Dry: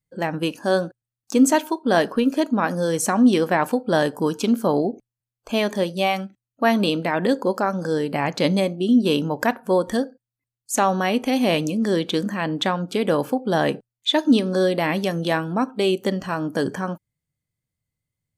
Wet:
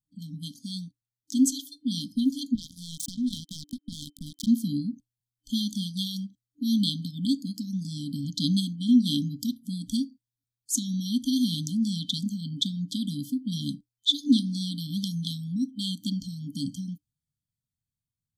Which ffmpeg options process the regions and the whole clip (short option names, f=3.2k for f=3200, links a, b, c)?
-filter_complex "[0:a]asettb=1/sr,asplit=3[a][b][c];[a]atrim=end=2.554[d];[b]atrim=start=2.55:end=4.47,asetpts=PTS-STARTPTS,afade=t=in:d=0.004:c=qsin,afade=t=out:st=1.916:d=0.004:c=qsin,highpass=100,acompressor=threshold=-28dB:ratio=2.5:attack=3.2:release=140:knee=1:detection=peak,acrusher=bits=3:mix=0:aa=0.5[e];[c]atrim=start=4.466[f];[d][e]acrossfade=d=0.004:c1=hsin:c2=qsin[g];[g][f]acrossfade=d=0.004:c1=qsin:c2=hsin,afftfilt=real='re*(1-between(b*sr/4096,300,3100))':imag='im*(1-between(b*sr/4096,300,3100))':win_size=4096:overlap=0.75,adynamicequalizer=threshold=0.00562:dfrequency=4800:dqfactor=1.1:tfrequency=4800:tqfactor=1.1:attack=5:release=100:ratio=0.375:range=2.5:mode=boostabove:tftype=bell,dynaudnorm=f=260:g=13:m=5dB,volume=-7dB"